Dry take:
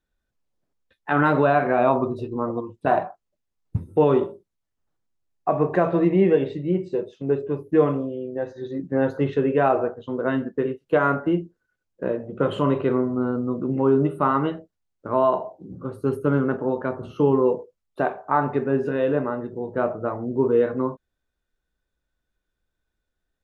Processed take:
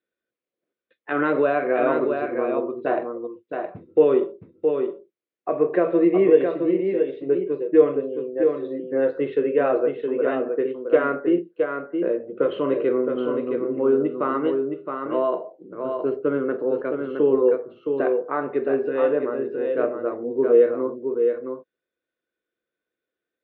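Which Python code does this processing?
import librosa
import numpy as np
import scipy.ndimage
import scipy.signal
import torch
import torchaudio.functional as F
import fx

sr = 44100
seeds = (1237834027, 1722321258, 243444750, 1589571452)

y = fx.cabinet(x, sr, low_hz=280.0, low_slope=12, high_hz=3600.0, hz=(340.0, 490.0, 860.0, 2200.0), db=(7, 8, -10, 4))
y = y + 10.0 ** (-5.5 / 20.0) * np.pad(y, (int(667 * sr / 1000.0), 0))[:len(y)]
y = y * librosa.db_to_amplitude(-3.0)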